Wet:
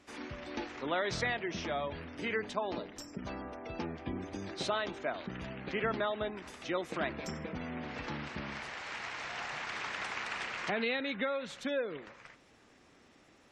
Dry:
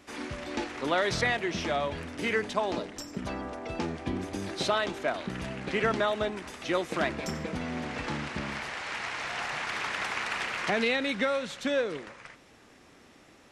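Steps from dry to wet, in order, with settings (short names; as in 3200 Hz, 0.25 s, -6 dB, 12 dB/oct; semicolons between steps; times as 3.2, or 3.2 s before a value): spectral gate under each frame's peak -30 dB strong; gain -6 dB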